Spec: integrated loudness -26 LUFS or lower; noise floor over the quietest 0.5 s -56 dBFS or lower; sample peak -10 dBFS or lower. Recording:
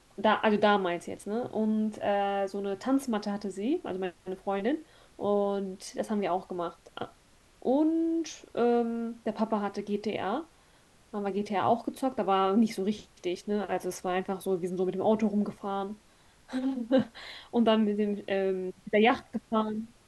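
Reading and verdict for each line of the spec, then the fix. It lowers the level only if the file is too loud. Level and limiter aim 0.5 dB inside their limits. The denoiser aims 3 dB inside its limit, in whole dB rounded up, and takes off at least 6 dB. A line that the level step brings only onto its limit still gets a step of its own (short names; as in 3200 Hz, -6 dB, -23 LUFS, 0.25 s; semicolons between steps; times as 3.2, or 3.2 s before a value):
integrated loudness -30.0 LUFS: OK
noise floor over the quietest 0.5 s -61 dBFS: OK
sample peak -11.0 dBFS: OK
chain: none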